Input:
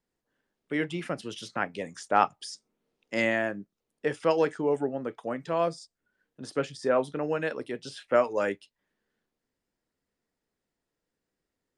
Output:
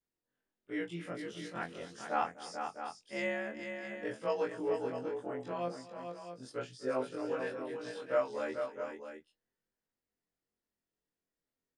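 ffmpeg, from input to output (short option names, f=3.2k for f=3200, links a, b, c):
-af "afftfilt=real='re':imag='-im':win_size=2048:overlap=0.75,aecho=1:1:251|440|658:0.126|0.447|0.316,volume=-5.5dB"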